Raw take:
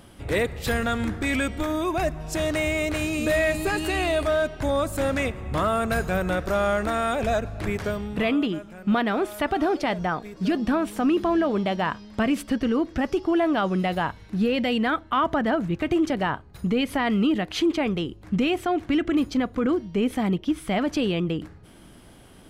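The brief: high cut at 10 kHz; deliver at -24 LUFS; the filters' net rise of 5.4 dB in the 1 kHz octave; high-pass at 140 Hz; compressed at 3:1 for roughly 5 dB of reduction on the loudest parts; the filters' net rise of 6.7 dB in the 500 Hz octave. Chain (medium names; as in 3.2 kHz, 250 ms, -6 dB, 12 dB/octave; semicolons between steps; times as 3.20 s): high-pass 140 Hz; low-pass 10 kHz; peaking EQ 500 Hz +7.5 dB; peaking EQ 1 kHz +4.5 dB; compression 3:1, threshold -20 dBFS; trim +0.5 dB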